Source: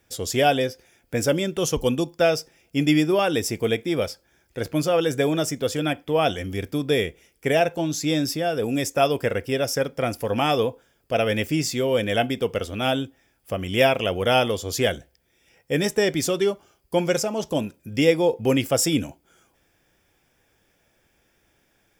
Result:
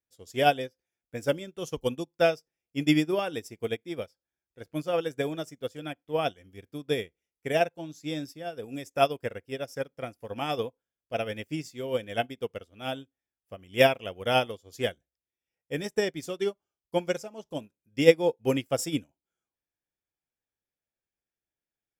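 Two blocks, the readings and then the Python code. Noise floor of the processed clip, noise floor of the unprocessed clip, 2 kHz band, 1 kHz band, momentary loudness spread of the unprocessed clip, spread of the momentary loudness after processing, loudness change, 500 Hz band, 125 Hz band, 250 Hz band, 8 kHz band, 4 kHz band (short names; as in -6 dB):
under -85 dBFS, -66 dBFS, -6.0 dB, -5.5 dB, 8 LU, 14 LU, -6.5 dB, -6.0 dB, -9.5 dB, -8.0 dB, -14.0 dB, -8.0 dB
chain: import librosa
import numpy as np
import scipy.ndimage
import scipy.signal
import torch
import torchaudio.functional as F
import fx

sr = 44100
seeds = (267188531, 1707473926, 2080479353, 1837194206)

y = fx.upward_expand(x, sr, threshold_db=-35.0, expansion=2.5)
y = y * 10.0 ** (2.0 / 20.0)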